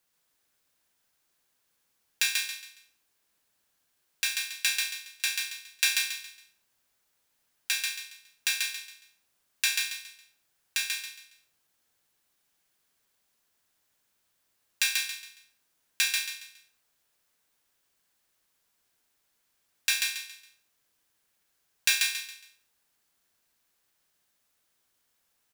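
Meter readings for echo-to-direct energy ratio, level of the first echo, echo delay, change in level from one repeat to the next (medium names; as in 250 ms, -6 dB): -3.0 dB, -3.5 dB, 138 ms, -10.0 dB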